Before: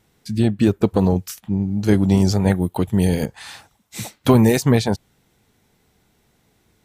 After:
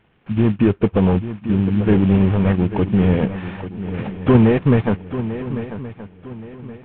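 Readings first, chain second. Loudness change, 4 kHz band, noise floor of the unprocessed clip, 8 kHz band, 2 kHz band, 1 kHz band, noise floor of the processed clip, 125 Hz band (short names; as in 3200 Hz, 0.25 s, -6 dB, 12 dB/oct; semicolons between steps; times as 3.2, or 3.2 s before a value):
+0.5 dB, -7.0 dB, -63 dBFS, under -40 dB, +1.0 dB, 0.0 dB, -46 dBFS, +2.0 dB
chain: CVSD 16 kbps; notch 2000 Hz, Q 22; in parallel at -1 dB: level quantiser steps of 12 dB; on the sum: swung echo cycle 1.123 s, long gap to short 3:1, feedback 32%, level -12 dB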